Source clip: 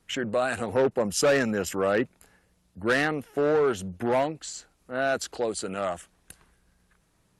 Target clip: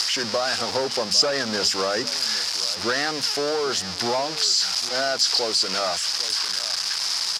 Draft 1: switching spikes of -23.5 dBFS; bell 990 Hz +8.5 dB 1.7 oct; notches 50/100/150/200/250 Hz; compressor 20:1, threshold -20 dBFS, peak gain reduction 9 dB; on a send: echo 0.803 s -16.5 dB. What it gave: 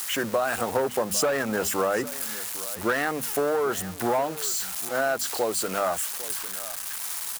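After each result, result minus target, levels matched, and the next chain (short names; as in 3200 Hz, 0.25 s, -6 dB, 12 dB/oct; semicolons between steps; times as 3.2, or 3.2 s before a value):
4000 Hz band -10.5 dB; switching spikes: distortion -9 dB
switching spikes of -23.5 dBFS; bell 990 Hz +8.5 dB 1.7 oct; notches 50/100/150/200/250 Hz; compressor 20:1, threshold -20 dBFS, peak gain reduction 9 dB; synth low-pass 5000 Hz, resonance Q 7.1; on a send: echo 0.803 s -16.5 dB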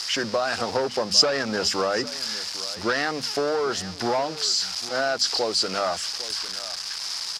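switching spikes: distortion -9 dB
switching spikes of -14.5 dBFS; bell 990 Hz +8.5 dB 1.7 oct; notches 50/100/150/200/250 Hz; compressor 20:1, threshold -20 dBFS, peak gain reduction 9 dB; synth low-pass 5000 Hz, resonance Q 7.1; on a send: echo 0.803 s -16.5 dB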